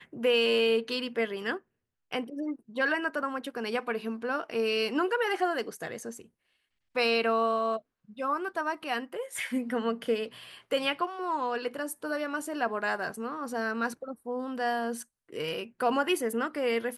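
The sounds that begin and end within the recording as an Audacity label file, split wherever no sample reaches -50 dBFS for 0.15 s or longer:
2.110000	6.260000	sound
6.950000	7.800000	sound
8.090000	15.030000	sound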